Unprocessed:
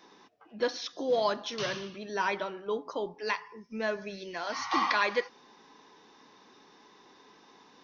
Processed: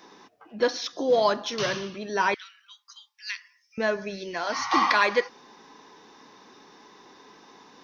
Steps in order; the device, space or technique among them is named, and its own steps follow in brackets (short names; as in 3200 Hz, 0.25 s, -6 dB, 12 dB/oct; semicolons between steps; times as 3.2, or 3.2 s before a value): 2.34–3.78 Bessel high-pass 2800 Hz, order 8; exciter from parts (in parallel at -9 dB: HPF 3600 Hz 12 dB/oct + soft clip -32 dBFS, distortion -16 dB + HPF 2100 Hz); on the sum: gain +6 dB